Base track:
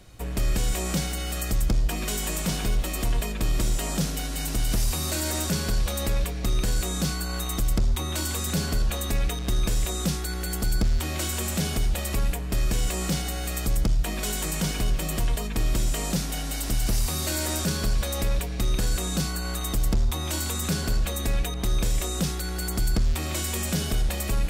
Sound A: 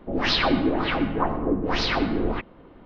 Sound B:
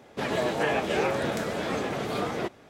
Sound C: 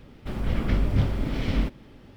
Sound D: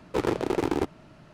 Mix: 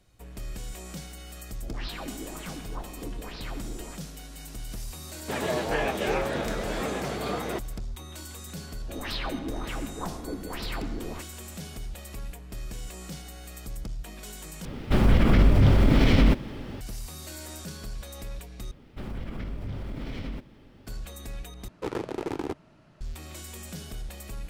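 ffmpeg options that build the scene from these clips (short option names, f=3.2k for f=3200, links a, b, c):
-filter_complex "[1:a]asplit=2[a][b];[3:a]asplit=2[c][d];[0:a]volume=-13dB[e];[c]alimiter=level_in=20.5dB:limit=-1dB:release=50:level=0:latency=1[f];[d]acompressor=threshold=-26dB:ratio=6:attack=3.2:release=140:knee=1:detection=peak[g];[e]asplit=4[h][i][j][k];[h]atrim=end=14.654[l];[f]atrim=end=2.16,asetpts=PTS-STARTPTS,volume=-9dB[m];[i]atrim=start=16.806:end=18.714[n];[g]atrim=end=2.16,asetpts=PTS-STARTPTS,volume=-4dB[o];[j]atrim=start=20.866:end=21.684[p];[4:a]atrim=end=1.33,asetpts=PTS-STARTPTS,volume=-6dB[q];[k]atrim=start=23.006[r];[a]atrim=end=2.85,asetpts=PTS-STARTPTS,volume=-17.5dB,afade=t=in:d=0.004:c=hsin,afade=t=out:st=2.846:d=0.004:c=hsin,adelay=1550[s];[2:a]atrim=end=2.69,asetpts=PTS-STARTPTS,volume=-1.5dB,afade=t=in:d=0.004:c=hsin,afade=t=out:st=2.686:d=0.004:c=hsin,adelay=5110[t];[b]atrim=end=2.85,asetpts=PTS-STARTPTS,volume=-12dB,afade=t=in:d=0.004:c=hsin,afade=t=out:st=2.846:d=0.004:c=hsin,adelay=8810[u];[l][m]acrossfade=d=0.004:c1=hsin:c2=hsin[v];[v][n]acrossfade=d=0.004:c1=hsin:c2=hsin[w];[w][o]acrossfade=d=0.004:c1=hsin:c2=hsin[x];[x][p]acrossfade=d=0.004:c1=hsin:c2=hsin[y];[y][q]acrossfade=d=0.004:c1=hsin:c2=hsin[z];[z][r]acrossfade=d=0.004:c1=hsin:c2=hsin[aa];[aa][s][t][u]amix=inputs=4:normalize=0"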